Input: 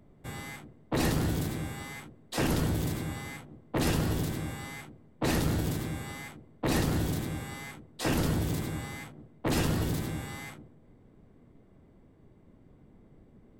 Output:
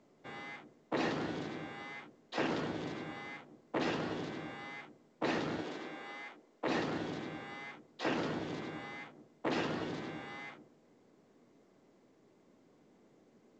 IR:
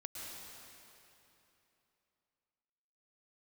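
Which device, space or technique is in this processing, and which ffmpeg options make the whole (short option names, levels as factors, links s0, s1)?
telephone: -filter_complex "[0:a]asettb=1/sr,asplit=3[s0][s1][s2];[s0]atrim=end=5.624[s3];[s1]atrim=start=5.62:end=6.67,asetpts=PTS-STARTPTS,afade=t=in:d=0.004:c=qsin,afade=t=out:st=1.046:d=0.004:c=qsin,highpass=290[s4];[s2]atrim=start=6.666[s5];[s3][s4]acrossfade=d=0.004:c1=hsin:c2=qsin[s6];[s6][s5]acrossfade=d=0.004:c1=qsin:c2=hsin,highpass=300,lowpass=3400,volume=0.75" -ar 16000 -c:a pcm_mulaw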